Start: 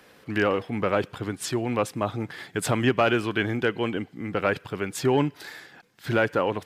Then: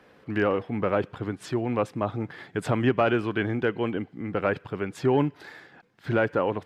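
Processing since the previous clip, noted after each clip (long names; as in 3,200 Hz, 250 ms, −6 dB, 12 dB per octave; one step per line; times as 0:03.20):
low-pass filter 1,600 Hz 6 dB per octave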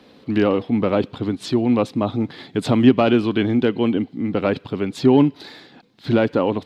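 graphic EQ with 15 bands 250 Hz +9 dB, 1,600 Hz −7 dB, 4,000 Hz +12 dB
level +4.5 dB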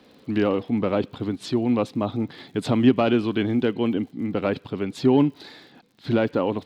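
surface crackle 73 per second −43 dBFS
level −4 dB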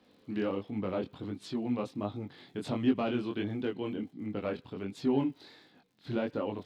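chorus effect 1.4 Hz, delay 19 ms, depth 5.2 ms
level −8 dB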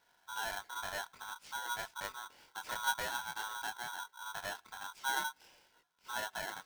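ring modulator with a square carrier 1,200 Hz
level −7.5 dB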